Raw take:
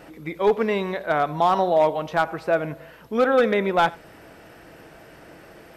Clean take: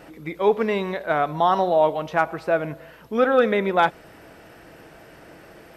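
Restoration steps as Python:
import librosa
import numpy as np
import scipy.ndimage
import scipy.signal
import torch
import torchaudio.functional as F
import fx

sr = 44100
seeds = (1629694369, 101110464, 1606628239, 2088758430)

y = fx.fix_declip(x, sr, threshold_db=-11.0)
y = fx.fix_echo_inverse(y, sr, delay_ms=89, level_db=-23.5)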